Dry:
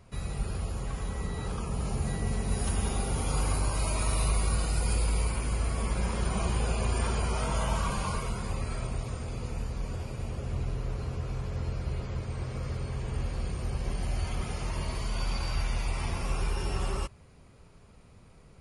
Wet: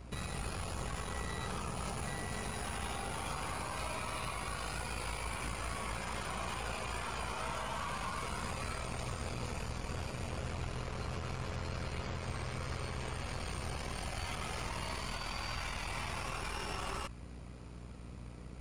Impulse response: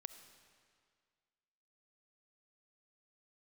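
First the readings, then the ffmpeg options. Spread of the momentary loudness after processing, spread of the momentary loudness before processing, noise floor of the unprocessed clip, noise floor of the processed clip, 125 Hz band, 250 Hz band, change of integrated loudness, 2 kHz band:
2 LU, 7 LU, -54 dBFS, -48 dBFS, -10.5 dB, -8.0 dB, -7.5 dB, -0.5 dB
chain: -filter_complex "[0:a]bandreject=f=50:t=h:w=6,bandreject=f=100:t=h:w=6,acrossover=split=3500[a][b];[b]acompressor=threshold=-46dB:ratio=4:attack=1:release=60[c];[a][c]amix=inputs=2:normalize=0,highpass=56,highshelf=f=9.5k:g=-4,acrossover=split=670|1800[d][e][f];[d]acompressor=threshold=-42dB:ratio=6[g];[g][e][f]amix=inputs=3:normalize=0,alimiter=level_in=11.5dB:limit=-24dB:level=0:latency=1:release=47,volume=-11.5dB,aeval=exprs='val(0)+0.00224*(sin(2*PI*60*n/s)+sin(2*PI*2*60*n/s)/2+sin(2*PI*3*60*n/s)/3+sin(2*PI*4*60*n/s)/4+sin(2*PI*5*60*n/s)/5)':c=same,aeval=exprs='0.02*(cos(1*acos(clip(val(0)/0.02,-1,1)))-cos(1*PI/2))+0.00316*(cos(4*acos(clip(val(0)/0.02,-1,1)))-cos(4*PI/2))':c=same,volume=4dB"

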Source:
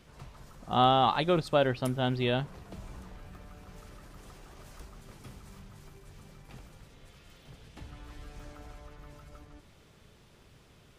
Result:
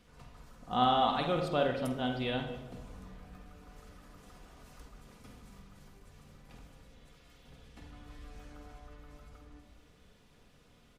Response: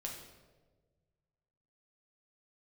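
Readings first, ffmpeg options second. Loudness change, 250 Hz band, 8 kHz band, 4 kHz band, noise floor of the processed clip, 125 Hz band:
-4.0 dB, -3.0 dB, -5.0 dB, -3.5 dB, -62 dBFS, -7.0 dB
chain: -filter_complex "[0:a]aecho=1:1:4.1:0.41,asplit=2[a][b];[1:a]atrim=start_sample=2205,lowpass=4.9k,adelay=48[c];[b][c]afir=irnorm=-1:irlink=0,volume=-2.5dB[d];[a][d]amix=inputs=2:normalize=0,volume=-6dB"

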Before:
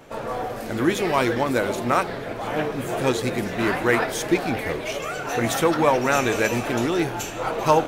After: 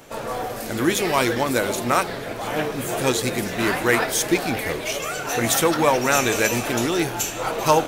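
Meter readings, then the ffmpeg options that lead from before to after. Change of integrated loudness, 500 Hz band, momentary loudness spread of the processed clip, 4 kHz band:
+1.5 dB, 0.0 dB, 8 LU, +5.0 dB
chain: -af "highshelf=f=4k:g=11"

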